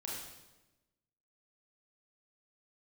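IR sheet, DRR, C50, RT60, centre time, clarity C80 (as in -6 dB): -4.5 dB, 0.0 dB, 1.1 s, 69 ms, 3.0 dB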